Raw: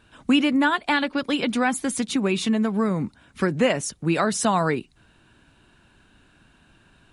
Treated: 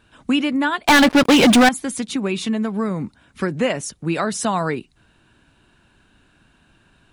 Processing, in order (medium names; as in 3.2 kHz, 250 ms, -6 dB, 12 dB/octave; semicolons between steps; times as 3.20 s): 0.87–1.69 s: waveshaping leveller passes 5